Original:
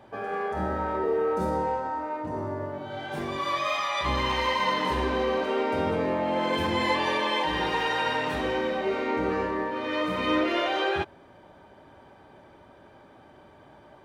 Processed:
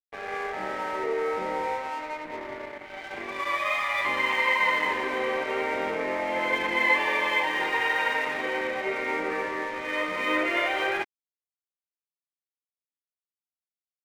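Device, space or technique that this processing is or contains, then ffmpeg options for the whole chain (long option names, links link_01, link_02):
pocket radio on a weak battery: -af "highpass=340,lowpass=3100,aeval=exprs='sgn(val(0))*max(abs(val(0))-0.00891,0)':channel_layout=same,equalizer=frequency=2100:width_type=o:width=0.46:gain=12"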